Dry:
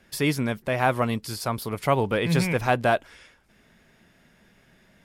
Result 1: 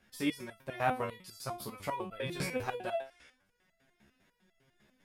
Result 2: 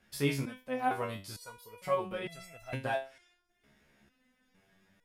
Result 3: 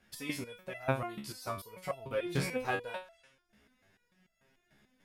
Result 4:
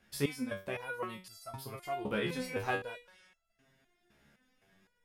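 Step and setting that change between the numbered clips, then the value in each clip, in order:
resonator arpeggio, rate: 10 Hz, 2.2 Hz, 6.8 Hz, 3.9 Hz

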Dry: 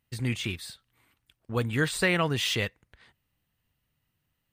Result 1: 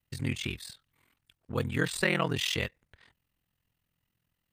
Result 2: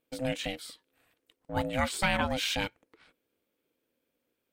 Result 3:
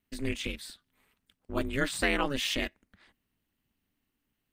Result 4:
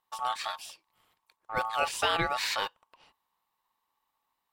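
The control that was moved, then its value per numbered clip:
ring modulator, frequency: 21 Hz, 390 Hz, 140 Hz, 1 kHz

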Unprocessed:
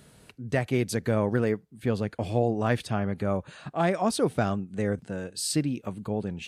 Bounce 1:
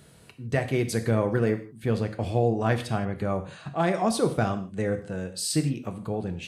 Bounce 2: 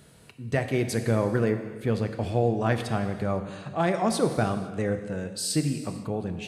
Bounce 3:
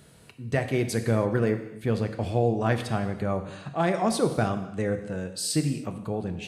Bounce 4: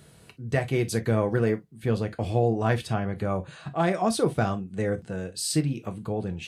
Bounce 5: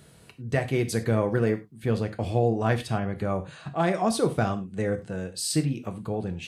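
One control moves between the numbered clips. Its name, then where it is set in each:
gated-style reverb, gate: 190 ms, 540 ms, 340 ms, 80 ms, 130 ms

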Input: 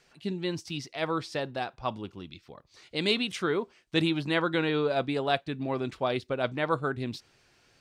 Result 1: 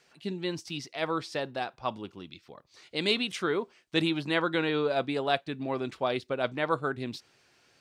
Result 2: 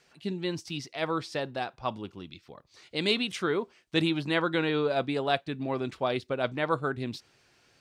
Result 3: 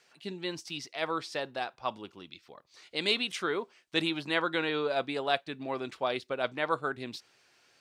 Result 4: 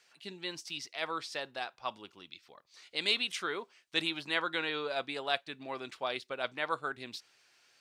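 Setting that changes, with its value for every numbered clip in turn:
high-pass, cutoff frequency: 170 Hz, 67 Hz, 510 Hz, 1.4 kHz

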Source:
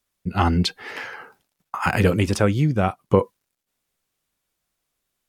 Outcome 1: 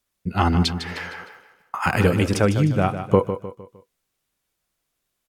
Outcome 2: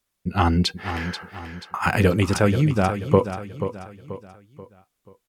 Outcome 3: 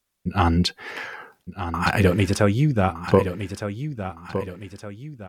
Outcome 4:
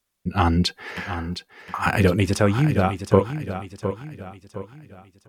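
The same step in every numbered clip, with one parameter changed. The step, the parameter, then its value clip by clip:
feedback delay, time: 153 ms, 484 ms, 1214 ms, 713 ms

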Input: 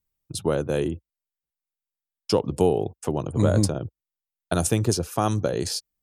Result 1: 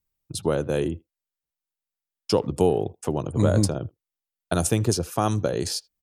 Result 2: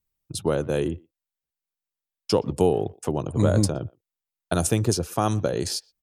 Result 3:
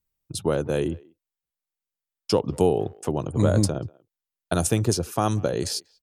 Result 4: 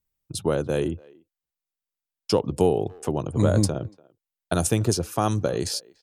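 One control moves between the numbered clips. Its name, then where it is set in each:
speakerphone echo, time: 80 ms, 120 ms, 190 ms, 290 ms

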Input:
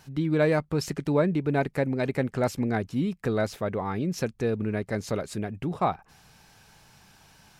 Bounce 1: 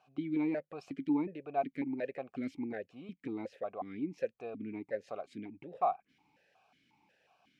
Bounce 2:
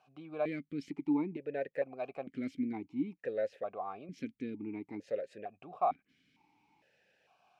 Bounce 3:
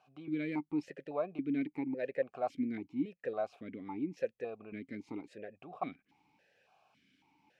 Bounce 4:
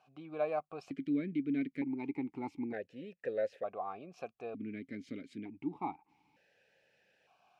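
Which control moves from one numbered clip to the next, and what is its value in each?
stepped vowel filter, rate: 5.5 Hz, 2.2 Hz, 3.6 Hz, 1.1 Hz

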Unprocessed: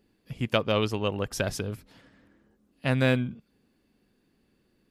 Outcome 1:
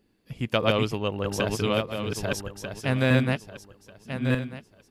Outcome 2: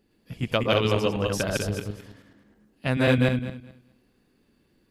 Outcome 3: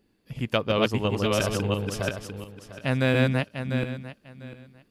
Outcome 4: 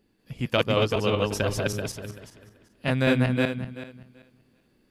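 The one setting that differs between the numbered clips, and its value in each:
backward echo that repeats, time: 621 ms, 106 ms, 349 ms, 192 ms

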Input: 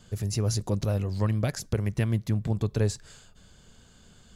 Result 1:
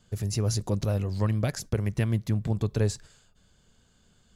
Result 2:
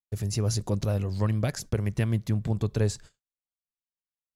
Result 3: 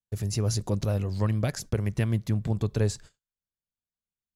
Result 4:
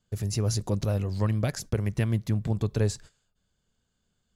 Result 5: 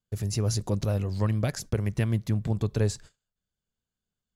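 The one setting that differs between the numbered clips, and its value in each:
gate, range: -8 dB, -60 dB, -47 dB, -21 dB, -34 dB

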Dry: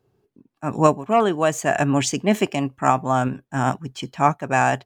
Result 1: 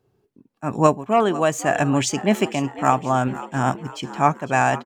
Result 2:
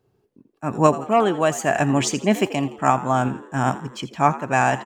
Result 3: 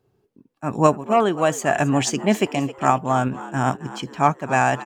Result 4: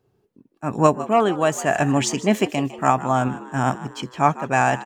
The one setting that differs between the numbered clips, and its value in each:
frequency-shifting echo, time: 501 ms, 84 ms, 266 ms, 154 ms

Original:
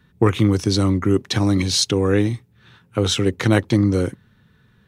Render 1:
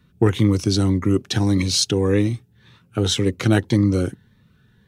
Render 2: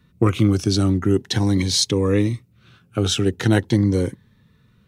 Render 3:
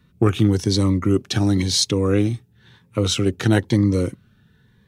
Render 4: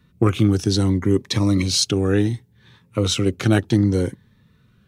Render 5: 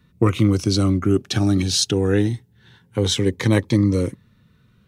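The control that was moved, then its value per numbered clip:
Shepard-style phaser, rate: 1.8 Hz, 0.43 Hz, 0.99 Hz, 0.66 Hz, 0.23 Hz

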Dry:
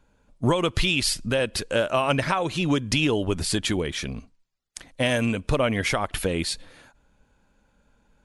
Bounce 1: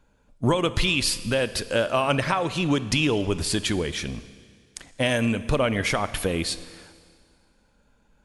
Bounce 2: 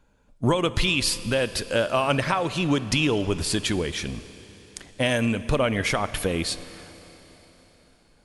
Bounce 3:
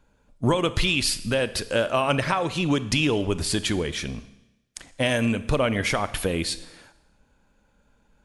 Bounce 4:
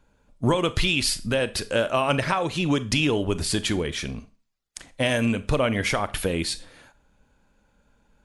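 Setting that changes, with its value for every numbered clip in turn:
Schroeder reverb, RT60: 2 s, 4.2 s, 0.95 s, 0.32 s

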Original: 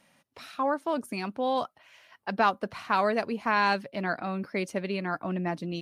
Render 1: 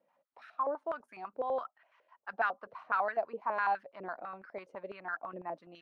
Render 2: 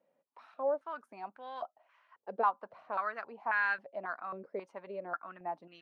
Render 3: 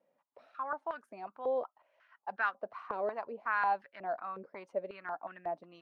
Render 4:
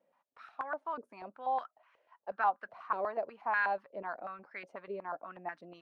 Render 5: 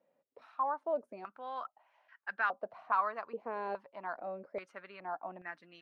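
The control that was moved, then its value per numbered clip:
step-sequenced band-pass, rate: 12 Hz, 3.7 Hz, 5.5 Hz, 8.2 Hz, 2.4 Hz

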